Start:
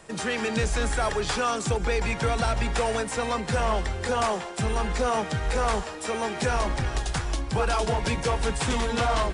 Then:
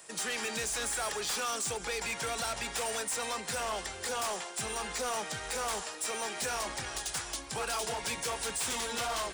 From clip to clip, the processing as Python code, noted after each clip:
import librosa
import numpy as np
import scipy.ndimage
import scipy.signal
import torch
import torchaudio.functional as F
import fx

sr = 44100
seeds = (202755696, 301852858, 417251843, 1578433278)

y = fx.riaa(x, sr, side='recording')
y = np.clip(y, -10.0 ** (-24.0 / 20.0), 10.0 ** (-24.0 / 20.0))
y = y * librosa.db_to_amplitude(-6.5)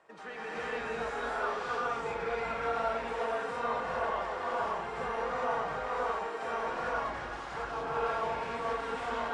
y = scipy.signal.sosfilt(scipy.signal.butter(2, 1200.0, 'lowpass', fs=sr, output='sos'), x)
y = fx.low_shelf(y, sr, hz=420.0, db=-11.0)
y = fx.rev_gated(y, sr, seeds[0], gate_ms=480, shape='rising', drr_db=-8.0)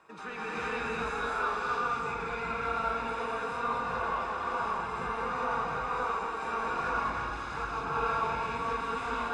y = x + 0.56 * np.pad(x, (int(0.8 * sr / 1000.0), 0))[:len(x)]
y = y + 10.0 ** (-6.5 / 20.0) * np.pad(y, (int(222 * sr / 1000.0), 0))[:len(y)]
y = fx.rider(y, sr, range_db=4, speed_s=2.0)